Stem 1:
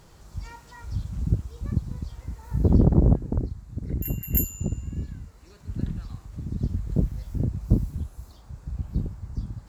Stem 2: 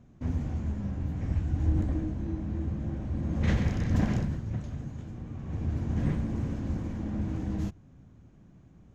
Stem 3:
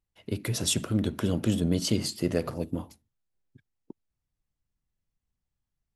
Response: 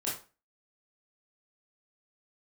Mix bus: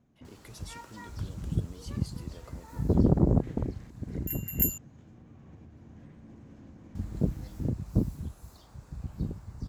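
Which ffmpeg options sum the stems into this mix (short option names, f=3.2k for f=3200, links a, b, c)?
-filter_complex "[0:a]adelay=250,volume=-1dB,asplit=3[a][b][c];[a]atrim=end=4.78,asetpts=PTS-STARTPTS,afade=t=out:st=4.776:d=0.004:c=hsin[d];[b]atrim=start=4.78:end=6.95,asetpts=PTS-STARTPTS,volume=0[e];[c]atrim=start=6.95,asetpts=PTS-STARTPTS,afade=t=in:d=0.004:c=hsin[f];[d][e][f]concat=n=3:v=0:a=1[g];[1:a]acompressor=threshold=-35dB:ratio=4,volume=-8.5dB[h];[2:a]volume=-10dB,asplit=2[i][j];[j]apad=whole_len=394553[k];[h][k]sidechaincompress=threshold=-53dB:ratio=8:attack=16:release=546[l];[l][i]amix=inputs=2:normalize=0,alimiter=level_in=13dB:limit=-24dB:level=0:latency=1:release=231,volume=-13dB,volume=0dB[m];[g][m]amix=inputs=2:normalize=0,lowshelf=f=91:g=-11"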